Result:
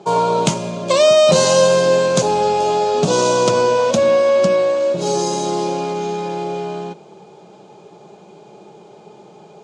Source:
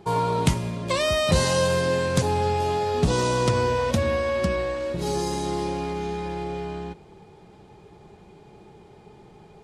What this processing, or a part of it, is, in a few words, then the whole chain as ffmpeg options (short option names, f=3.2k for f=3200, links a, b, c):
television speaker: -af "highpass=f=170:w=0.5412,highpass=f=170:w=1.3066,equalizer=f=260:t=q:w=4:g=-6,equalizer=f=600:t=q:w=4:g=7,equalizer=f=1.9k:t=q:w=4:g=-10,equalizer=f=6.6k:t=q:w=4:g=6,lowpass=f=8.3k:w=0.5412,lowpass=f=8.3k:w=1.3066,volume=7.5dB"